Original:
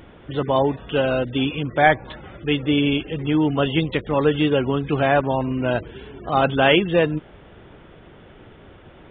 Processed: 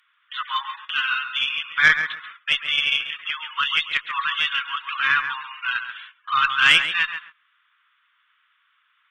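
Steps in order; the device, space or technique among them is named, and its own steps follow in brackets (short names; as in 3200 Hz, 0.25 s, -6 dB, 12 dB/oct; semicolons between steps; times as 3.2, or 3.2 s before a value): steep high-pass 1100 Hz 72 dB/oct; rockabilly slapback (tube stage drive 10 dB, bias 0.2; tape echo 0.137 s, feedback 27%, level -6 dB, low-pass 1800 Hz); gate -46 dBFS, range -17 dB; gain +7 dB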